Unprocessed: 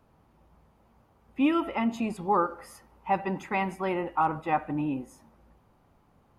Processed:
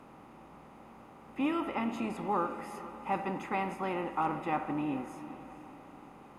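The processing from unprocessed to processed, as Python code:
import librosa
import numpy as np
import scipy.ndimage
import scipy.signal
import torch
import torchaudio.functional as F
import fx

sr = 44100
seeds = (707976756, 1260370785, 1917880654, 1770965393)

y = fx.bin_compress(x, sr, power=0.6)
y = fx.echo_diffused(y, sr, ms=451, feedback_pct=49, wet_db=-14)
y = y * 10.0 ** (-8.5 / 20.0)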